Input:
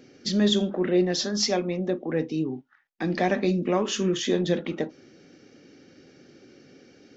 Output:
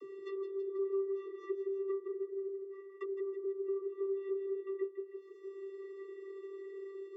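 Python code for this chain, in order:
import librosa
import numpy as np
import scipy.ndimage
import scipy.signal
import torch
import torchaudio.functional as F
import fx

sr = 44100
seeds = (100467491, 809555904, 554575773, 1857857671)

p1 = scipy.signal.medfilt(x, 9)
p2 = fx.wow_flutter(p1, sr, seeds[0], rate_hz=2.1, depth_cents=19.0)
p3 = fx.fold_sine(p2, sr, drive_db=9, ceiling_db=-11.0)
p4 = p2 + (p3 * 10.0 ** (-6.0 / 20.0))
p5 = fx.stiff_resonator(p4, sr, f0_hz=150.0, decay_s=0.34, stiffness=0.002)
p6 = fx.env_lowpass_down(p5, sr, base_hz=310.0, full_db=-29.5)
p7 = fx.vocoder(p6, sr, bands=32, carrier='square', carrier_hz=390.0)
p8 = p7 + fx.echo_feedback(p7, sr, ms=161, feedback_pct=40, wet_db=-7.5, dry=0)
y = fx.band_squash(p8, sr, depth_pct=70)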